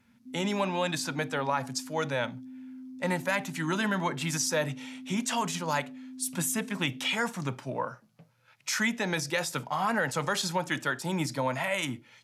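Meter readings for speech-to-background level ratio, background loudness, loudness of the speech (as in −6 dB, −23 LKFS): 14.5 dB, −45.0 LKFS, −30.5 LKFS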